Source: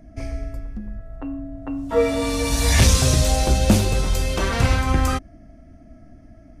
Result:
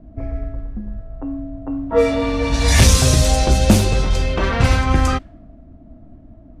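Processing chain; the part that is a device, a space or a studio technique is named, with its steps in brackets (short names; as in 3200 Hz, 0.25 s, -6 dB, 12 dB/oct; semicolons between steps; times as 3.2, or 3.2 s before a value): cassette deck with a dynamic noise filter (white noise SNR 34 dB; low-pass opened by the level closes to 600 Hz, open at -12 dBFS); gain +3.5 dB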